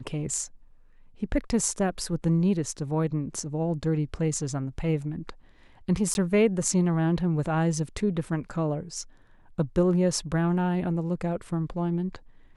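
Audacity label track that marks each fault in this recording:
6.140000	6.150000	dropout

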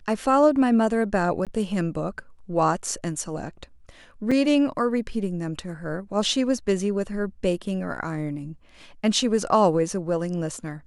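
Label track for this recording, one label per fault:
1.450000	1.470000	dropout 17 ms
4.310000	4.320000	dropout 5.2 ms

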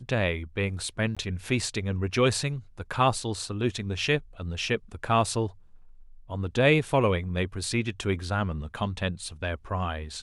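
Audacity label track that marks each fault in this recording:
1.150000	1.170000	dropout 16 ms

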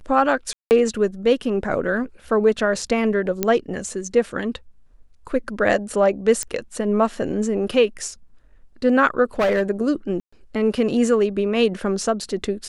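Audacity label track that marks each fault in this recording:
0.530000	0.710000	dropout 179 ms
3.430000	3.430000	pop -5 dBFS
6.430000	6.430000	pop -10 dBFS
9.390000	9.700000	clipped -15 dBFS
10.200000	10.320000	dropout 125 ms

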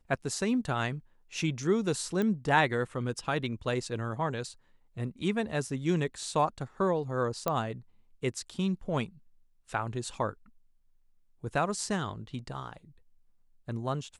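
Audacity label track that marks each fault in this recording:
2.220000	2.220000	pop -19 dBFS
7.480000	7.480000	pop -14 dBFS

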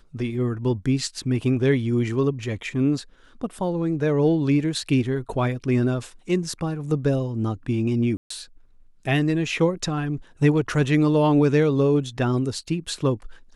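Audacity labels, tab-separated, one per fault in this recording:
8.170000	8.300000	dropout 134 ms

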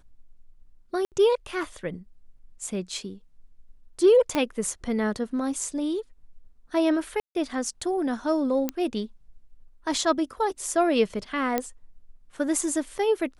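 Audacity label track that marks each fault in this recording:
1.050000	1.120000	dropout 68 ms
4.350000	4.350000	pop -11 dBFS
7.200000	7.350000	dropout 151 ms
8.690000	8.690000	pop -12 dBFS
11.580000	11.580000	pop -11 dBFS

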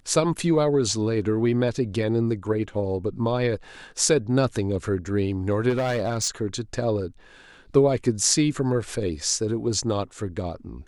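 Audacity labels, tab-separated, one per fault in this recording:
5.690000	6.290000	clipped -20 dBFS

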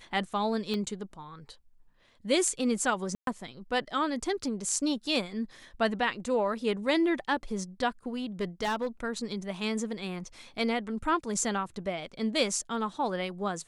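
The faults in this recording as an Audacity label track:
0.740000	0.740000	pop -21 dBFS
3.150000	3.270000	dropout 122 ms
8.410000	8.870000	clipped -25.5 dBFS

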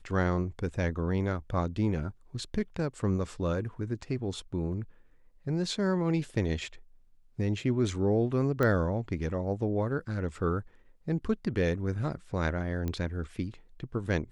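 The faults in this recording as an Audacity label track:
8.630000	8.630000	pop -16 dBFS
12.880000	12.880000	pop -20 dBFS

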